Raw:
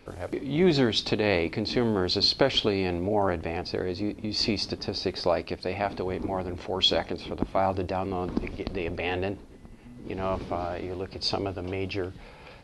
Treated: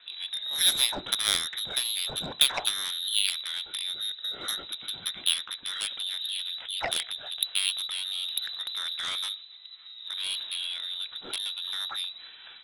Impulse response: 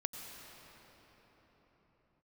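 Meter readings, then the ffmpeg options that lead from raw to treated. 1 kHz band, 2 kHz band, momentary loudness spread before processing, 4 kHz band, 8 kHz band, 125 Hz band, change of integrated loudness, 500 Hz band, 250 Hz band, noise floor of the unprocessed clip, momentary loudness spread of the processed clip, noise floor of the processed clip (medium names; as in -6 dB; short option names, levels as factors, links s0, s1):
-10.0 dB, -1.5 dB, 11 LU, +4.0 dB, +15.0 dB, under -20 dB, -0.5 dB, -20.0 dB, -23.0 dB, -48 dBFS, 10 LU, -48 dBFS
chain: -af "lowpass=f=3400:t=q:w=0.5098,lowpass=f=3400:t=q:w=0.6013,lowpass=f=3400:t=q:w=0.9,lowpass=f=3400:t=q:w=2.563,afreqshift=-4000,aeval=exprs='0.447*(cos(1*acos(clip(val(0)/0.447,-1,1)))-cos(1*PI/2))+0.126*(cos(7*acos(clip(val(0)/0.447,-1,1)))-cos(7*PI/2))':c=same"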